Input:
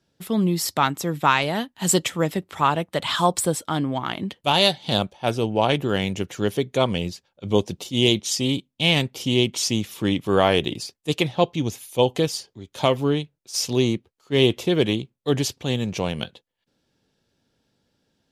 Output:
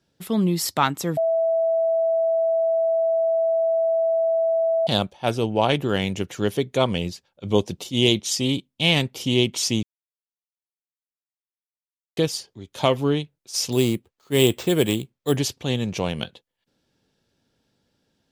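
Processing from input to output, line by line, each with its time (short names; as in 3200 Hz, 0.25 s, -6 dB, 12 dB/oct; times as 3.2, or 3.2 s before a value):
1.17–4.87 bleep 657 Hz -17.5 dBFS
9.83–12.17 mute
13.72–15.37 sample-rate reducer 11000 Hz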